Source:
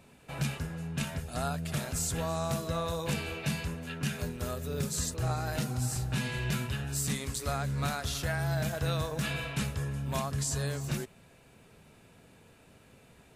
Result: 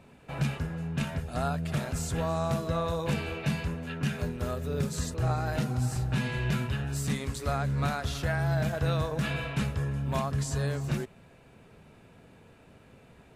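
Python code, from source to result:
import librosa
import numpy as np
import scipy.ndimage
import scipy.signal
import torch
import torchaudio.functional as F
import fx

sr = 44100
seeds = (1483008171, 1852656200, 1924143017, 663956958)

y = fx.high_shelf(x, sr, hz=4000.0, db=-11.5)
y = y * 10.0 ** (3.5 / 20.0)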